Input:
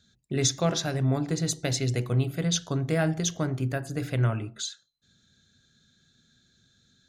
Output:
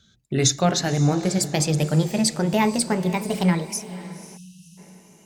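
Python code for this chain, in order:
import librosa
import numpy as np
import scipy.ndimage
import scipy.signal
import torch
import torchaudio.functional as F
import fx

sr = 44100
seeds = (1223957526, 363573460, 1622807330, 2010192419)

y = fx.speed_glide(x, sr, from_pct=95, to_pct=175)
y = fx.echo_diffused(y, sr, ms=522, feedback_pct=43, wet_db=-14.5)
y = fx.spec_erase(y, sr, start_s=4.37, length_s=0.41, low_hz=210.0, high_hz=2500.0)
y = y * 10.0 ** (5.5 / 20.0)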